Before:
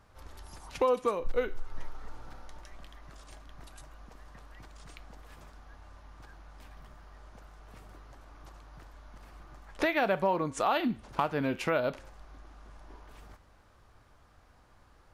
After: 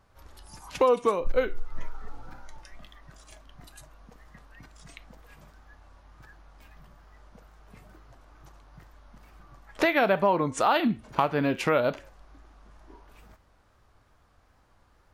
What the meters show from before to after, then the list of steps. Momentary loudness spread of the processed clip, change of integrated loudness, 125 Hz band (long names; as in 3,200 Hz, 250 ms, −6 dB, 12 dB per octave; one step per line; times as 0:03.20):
9 LU, +5.0 dB, +4.5 dB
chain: tape wow and flutter 77 cents
noise reduction from a noise print of the clip's start 7 dB
level +5 dB